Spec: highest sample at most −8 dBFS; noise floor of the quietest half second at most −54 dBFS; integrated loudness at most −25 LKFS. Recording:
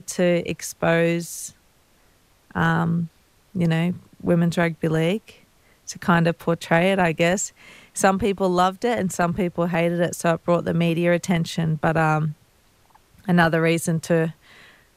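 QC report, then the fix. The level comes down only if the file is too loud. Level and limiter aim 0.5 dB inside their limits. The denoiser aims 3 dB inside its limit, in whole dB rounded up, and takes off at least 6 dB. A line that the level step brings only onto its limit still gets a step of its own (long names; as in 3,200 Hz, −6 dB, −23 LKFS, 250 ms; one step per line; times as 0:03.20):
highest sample −3.5 dBFS: out of spec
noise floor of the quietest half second −58 dBFS: in spec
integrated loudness −22.0 LKFS: out of spec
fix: level −3.5 dB
brickwall limiter −8.5 dBFS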